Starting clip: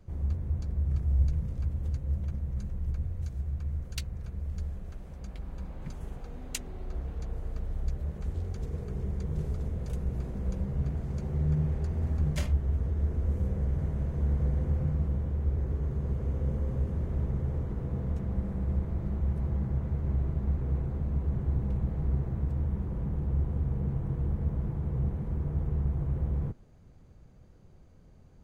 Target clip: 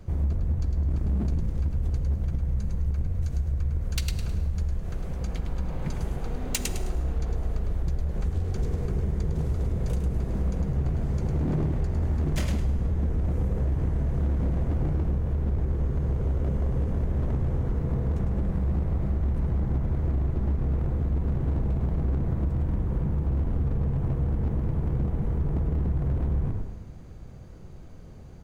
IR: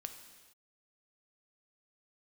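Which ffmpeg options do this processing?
-filter_complex "[0:a]asplit=5[s0][s1][s2][s3][s4];[s1]adelay=105,afreqshift=-39,volume=0.501[s5];[s2]adelay=210,afreqshift=-78,volume=0.155[s6];[s3]adelay=315,afreqshift=-117,volume=0.0484[s7];[s4]adelay=420,afreqshift=-156,volume=0.015[s8];[s0][s5][s6][s7][s8]amix=inputs=5:normalize=0,aeval=exprs='0.0668*(abs(mod(val(0)/0.0668+3,4)-2)-1)':c=same,asplit=2[s9][s10];[1:a]atrim=start_sample=2205[s11];[s10][s11]afir=irnorm=-1:irlink=0,volume=1.12[s12];[s9][s12]amix=inputs=2:normalize=0,acompressor=threshold=0.0398:ratio=6,volume=1.88"

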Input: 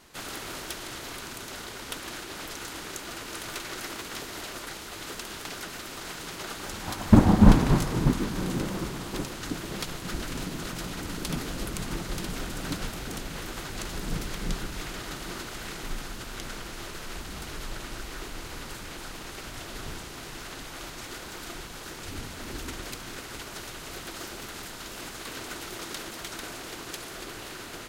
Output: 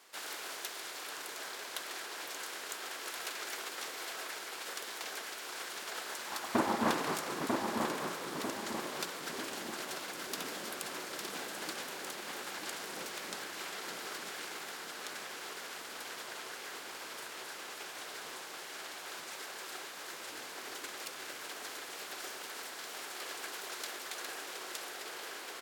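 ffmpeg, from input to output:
-filter_complex "[0:a]highpass=470,asplit=2[s0][s1];[s1]adelay=1028,lowpass=f=2000:p=1,volume=0.668,asplit=2[s2][s3];[s3]adelay=1028,lowpass=f=2000:p=1,volume=0.46,asplit=2[s4][s5];[s5]adelay=1028,lowpass=f=2000:p=1,volume=0.46,asplit=2[s6][s7];[s7]adelay=1028,lowpass=f=2000:p=1,volume=0.46,asplit=2[s8][s9];[s9]adelay=1028,lowpass=f=2000:p=1,volume=0.46,asplit=2[s10][s11];[s11]adelay=1028,lowpass=f=2000:p=1,volume=0.46[s12];[s0][s2][s4][s6][s8][s10][s12]amix=inputs=7:normalize=0,asetrate=48000,aresample=44100,volume=0.631"

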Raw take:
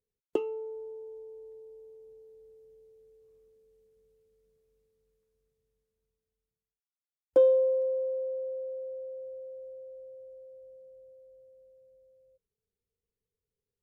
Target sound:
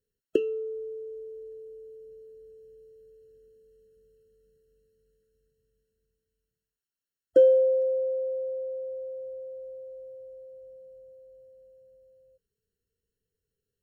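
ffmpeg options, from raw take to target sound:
-af "asuperstop=centerf=790:order=4:qfactor=1.3,afftfilt=real='re*eq(mod(floor(b*sr/1024/650),2),0)':imag='im*eq(mod(floor(b*sr/1024/650),2),0)':win_size=1024:overlap=0.75,volume=1.88"

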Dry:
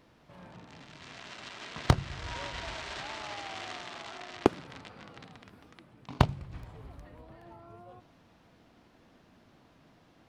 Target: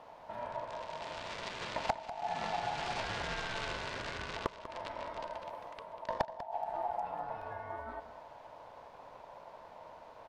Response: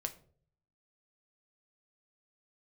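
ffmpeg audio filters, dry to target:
-af "bass=f=250:g=12,treble=f=4000:g=-3,acompressor=threshold=0.02:ratio=16,aeval=exprs='val(0)*sin(2*PI*780*n/s)':c=same,aecho=1:1:194:0.224,volume=1.78"

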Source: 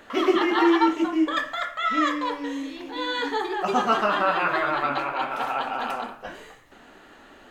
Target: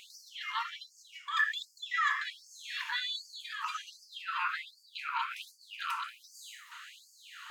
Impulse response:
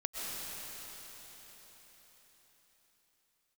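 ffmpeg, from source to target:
-af "acompressor=threshold=0.0178:ratio=6,asetnsamples=n=441:p=0,asendcmd='1.39 equalizer g 9;3 equalizer g -4.5',equalizer=f=1700:t=o:w=0.38:g=-7.5,afftfilt=real='re*gte(b*sr/1024,880*pow(4500/880,0.5+0.5*sin(2*PI*1.3*pts/sr)))':imag='im*gte(b*sr/1024,880*pow(4500/880,0.5+0.5*sin(2*PI*1.3*pts/sr)))':win_size=1024:overlap=0.75,volume=2.37"

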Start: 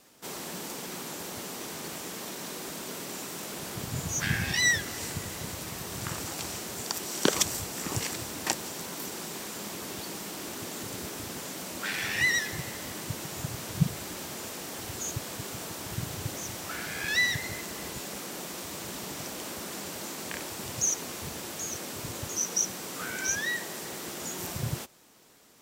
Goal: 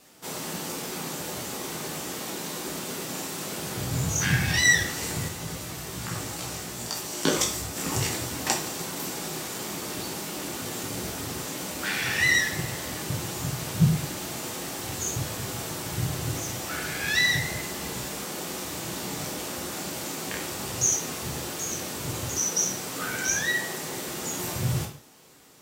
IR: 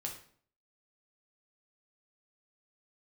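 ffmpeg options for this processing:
-filter_complex "[0:a]asettb=1/sr,asplit=3[s0][s1][s2];[s0]atrim=end=5.284[s3];[s1]atrim=start=5.28:end=7.76,asetpts=PTS-STARTPTS,afade=t=in:d=0.004:c=qsin,afade=t=out:st=2.476:d=0.004:c=qsin,flanger=delay=16.5:depth=2.1:speed=2.7[s4];[s2]atrim=start=7.756[s5];[s3][s4]acrossfade=d=0.004:c1=hsin:c2=qsin[s6];[s6][s5]acrossfade=d=0.004:c1=qsin:c2=hsin[s7];[1:a]atrim=start_sample=2205,afade=t=out:st=0.31:d=0.01,atrim=end_sample=14112[s8];[s7][s8]afir=irnorm=-1:irlink=0,volume=1.78"

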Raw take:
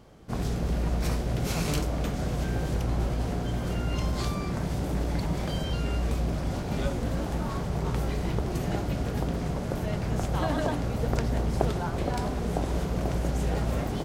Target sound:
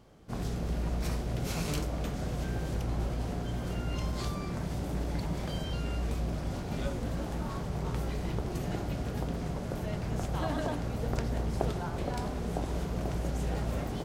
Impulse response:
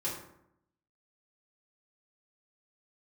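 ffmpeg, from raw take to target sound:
-af "bandreject=f=67.19:t=h:w=4,bandreject=f=134.38:t=h:w=4,bandreject=f=201.57:t=h:w=4,bandreject=f=268.76:t=h:w=4,bandreject=f=335.95:t=h:w=4,bandreject=f=403.14:t=h:w=4,bandreject=f=470.33:t=h:w=4,bandreject=f=537.52:t=h:w=4,bandreject=f=604.71:t=h:w=4,bandreject=f=671.9:t=h:w=4,bandreject=f=739.09:t=h:w=4,bandreject=f=806.28:t=h:w=4,bandreject=f=873.47:t=h:w=4,bandreject=f=940.66:t=h:w=4,bandreject=f=1007.85:t=h:w=4,bandreject=f=1075.04:t=h:w=4,bandreject=f=1142.23:t=h:w=4,bandreject=f=1209.42:t=h:w=4,bandreject=f=1276.61:t=h:w=4,bandreject=f=1343.8:t=h:w=4,bandreject=f=1410.99:t=h:w=4,bandreject=f=1478.18:t=h:w=4,bandreject=f=1545.37:t=h:w=4,bandreject=f=1612.56:t=h:w=4,bandreject=f=1679.75:t=h:w=4,bandreject=f=1746.94:t=h:w=4,bandreject=f=1814.13:t=h:w=4,bandreject=f=1881.32:t=h:w=4,bandreject=f=1948.51:t=h:w=4,bandreject=f=2015.7:t=h:w=4,bandreject=f=2082.89:t=h:w=4,bandreject=f=2150.08:t=h:w=4,bandreject=f=2217.27:t=h:w=4,bandreject=f=2284.46:t=h:w=4,bandreject=f=2351.65:t=h:w=4,bandreject=f=2418.84:t=h:w=4,volume=0.596"

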